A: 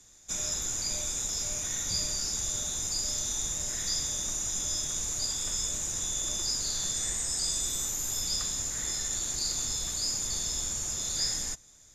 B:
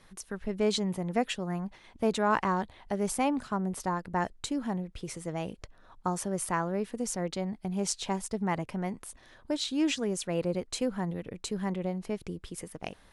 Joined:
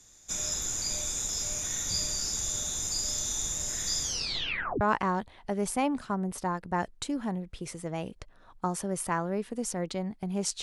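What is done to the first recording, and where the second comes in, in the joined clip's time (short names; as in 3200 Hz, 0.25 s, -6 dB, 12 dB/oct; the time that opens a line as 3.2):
A
4.02 tape stop 0.79 s
4.81 switch to B from 2.23 s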